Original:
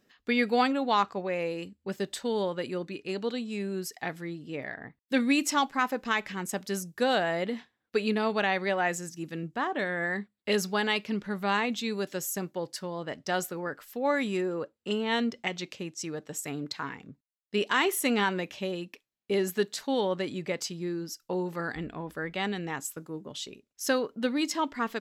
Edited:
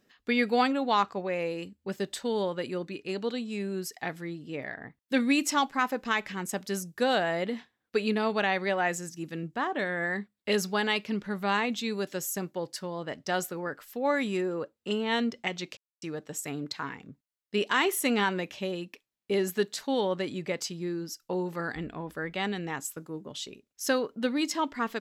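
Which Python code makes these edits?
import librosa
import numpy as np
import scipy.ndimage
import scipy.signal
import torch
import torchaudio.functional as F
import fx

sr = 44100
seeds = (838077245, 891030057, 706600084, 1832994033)

y = fx.edit(x, sr, fx.silence(start_s=15.77, length_s=0.25), tone=tone)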